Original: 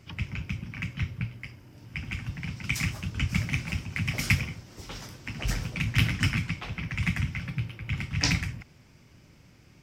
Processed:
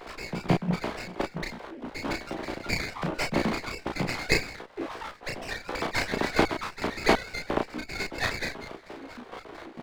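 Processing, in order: formants replaced by sine waves; chorus voices 6, 0.3 Hz, delay 15 ms, depth 3.1 ms; square tremolo 4.4 Hz, depth 65%, duty 35%; in parallel at +0.5 dB: compression, threshold -49 dBFS, peak gain reduction 26 dB; on the sum: treble shelf 2.4 kHz -10 dB; doubling 33 ms -3 dB; reverse; upward compressor, threshold -39 dBFS; reverse; sliding maximum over 9 samples; trim +8.5 dB

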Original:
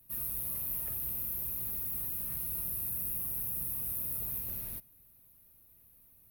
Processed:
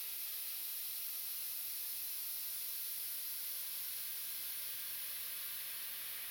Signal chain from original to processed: Chebyshev shaper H 7 -22 dB, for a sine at -20 dBFS; LFO band-pass sine 1.4 Hz 400–4900 Hz; phaser 0.96 Hz, delay 2.5 ms, feedback 44%; Paulstretch 46×, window 0.25 s, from 1.56 s; trim +16 dB

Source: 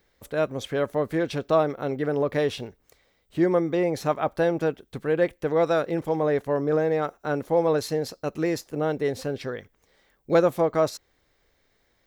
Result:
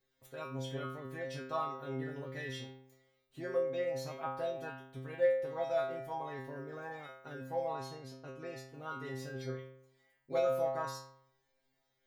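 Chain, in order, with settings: 7.73–8.74 s: low-pass 3.3 kHz 6 dB/octave; inharmonic resonator 130 Hz, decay 0.81 s, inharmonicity 0.002; trim +3.5 dB

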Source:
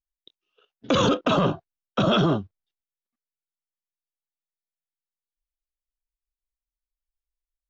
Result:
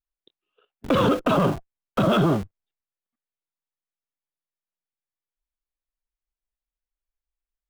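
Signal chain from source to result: low-pass 2.5 kHz 12 dB/octave; in parallel at -6 dB: Schmitt trigger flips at -38.5 dBFS

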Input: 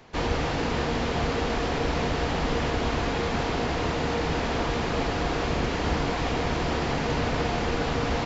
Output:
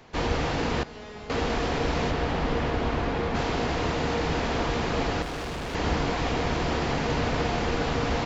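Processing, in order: 0.83–1.30 s: feedback comb 210 Hz, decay 0.54 s, harmonics all, mix 90%; 2.10–3.34 s: low-pass 3.8 kHz -> 2 kHz 6 dB/octave; 5.22–5.75 s: overload inside the chain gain 31 dB

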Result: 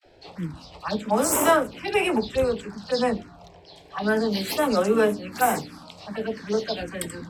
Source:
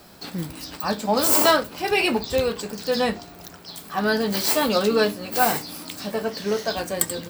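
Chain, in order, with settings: gate with hold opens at -39 dBFS; level-controlled noise filter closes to 2.2 kHz, open at -15.5 dBFS; touch-sensitive phaser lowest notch 180 Hz, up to 4.5 kHz, full sweep at -17 dBFS; phase dispersion lows, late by 42 ms, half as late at 580 Hz

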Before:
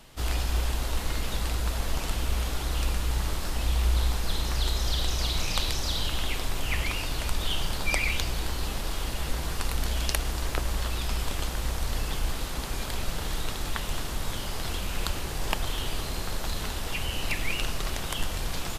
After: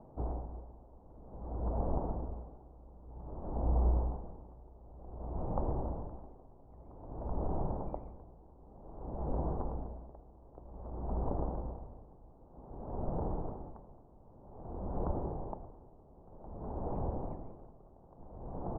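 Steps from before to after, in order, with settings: steep low-pass 880 Hz 36 dB/octave; bass shelf 66 Hz -12 dB; logarithmic tremolo 0.53 Hz, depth 24 dB; trim +3 dB

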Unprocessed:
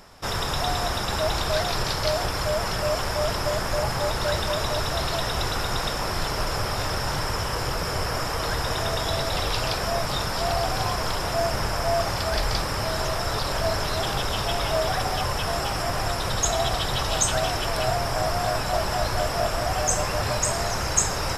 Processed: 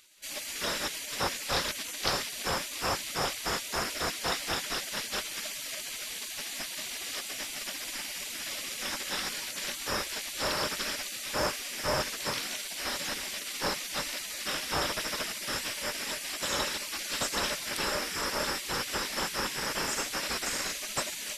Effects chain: high-pass 120 Hz 6 dB/octave; spectral gate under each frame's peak -15 dB weak; peaking EQ 600 Hz +10 dB 0.24 oct

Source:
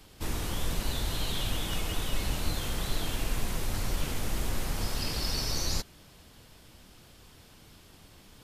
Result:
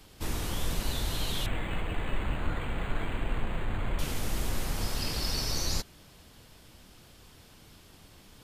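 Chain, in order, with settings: 1.46–3.99 s: decimation joined by straight lines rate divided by 8×

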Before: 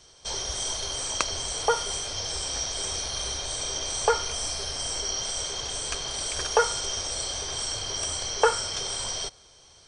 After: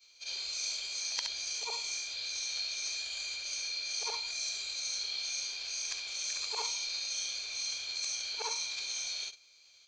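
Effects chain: short-time spectra conjugated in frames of 141 ms; formant shift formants -5 st; pre-emphasis filter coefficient 0.97; trim +3 dB

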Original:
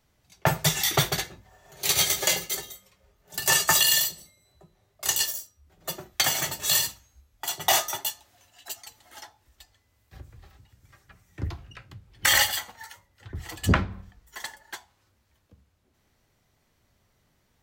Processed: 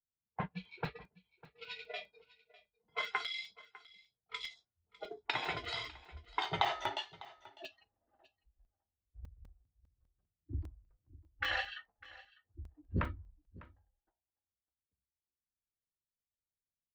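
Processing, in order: Doppler pass-by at 6.97 s, 39 m/s, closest 28 m; level-controlled noise filter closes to 440 Hz, open at -33 dBFS; spectral noise reduction 22 dB; compression 8:1, threshold -33 dBFS, peak gain reduction 16 dB; low-pass 3.5 kHz 24 dB/octave; tilt EQ -2 dB/octave; delay 625 ms -20 dB; tape speed +4%; bass shelf 310 Hz -8 dB; crackling interface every 0.20 s, samples 128, zero; trim +7 dB

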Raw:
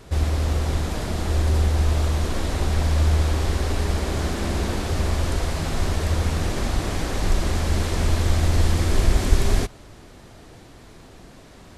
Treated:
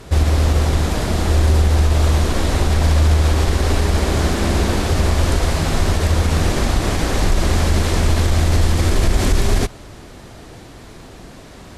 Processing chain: Chebyshev shaper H 7 -34 dB, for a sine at -2.5 dBFS; peak limiter -14.5 dBFS, peak gain reduction 10.5 dB; trim +8.5 dB

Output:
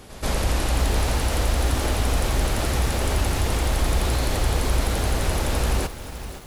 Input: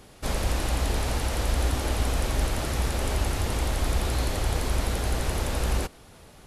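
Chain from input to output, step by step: in parallel at -1 dB: peak limiter -22 dBFS, peak gain reduction 8.5 dB; on the sum: reverse echo 131 ms -17 dB; bit-crushed delay 519 ms, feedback 35%, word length 6-bit, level -11.5 dB

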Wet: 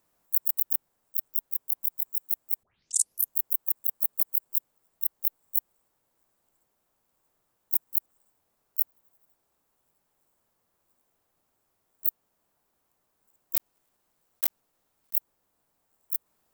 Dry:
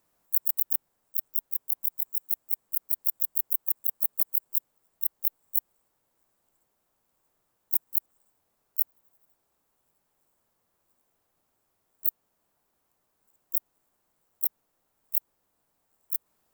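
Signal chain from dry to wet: 2.63 s: tape start 0.73 s; 13.55–15.15 s: block-companded coder 3-bit

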